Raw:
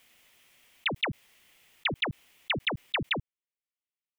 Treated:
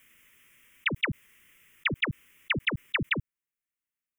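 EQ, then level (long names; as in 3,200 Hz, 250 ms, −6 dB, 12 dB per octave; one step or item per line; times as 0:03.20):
phaser with its sweep stopped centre 1,800 Hz, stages 4
+4.0 dB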